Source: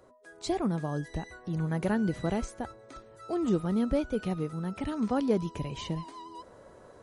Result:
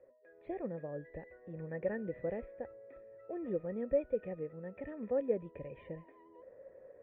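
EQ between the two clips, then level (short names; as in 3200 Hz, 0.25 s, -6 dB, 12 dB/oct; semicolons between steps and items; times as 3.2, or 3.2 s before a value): vocal tract filter e; air absorption 190 m; +4.5 dB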